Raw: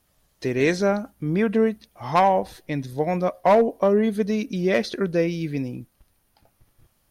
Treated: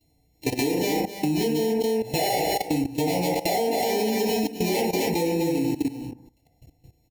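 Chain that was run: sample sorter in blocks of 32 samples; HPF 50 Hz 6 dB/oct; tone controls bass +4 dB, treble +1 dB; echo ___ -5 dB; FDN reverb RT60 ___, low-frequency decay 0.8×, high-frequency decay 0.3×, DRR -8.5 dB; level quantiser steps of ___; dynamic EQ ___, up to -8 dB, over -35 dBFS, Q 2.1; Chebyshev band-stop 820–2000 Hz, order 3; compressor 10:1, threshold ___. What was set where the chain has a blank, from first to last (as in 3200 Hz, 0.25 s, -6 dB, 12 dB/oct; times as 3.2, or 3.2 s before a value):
0.256 s, 0.72 s, 16 dB, 150 Hz, -20 dBFS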